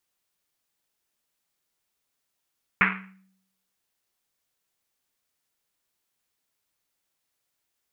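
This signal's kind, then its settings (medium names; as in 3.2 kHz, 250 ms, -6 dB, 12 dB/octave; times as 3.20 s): Risset drum, pitch 190 Hz, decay 0.78 s, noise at 1.8 kHz, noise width 1.4 kHz, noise 70%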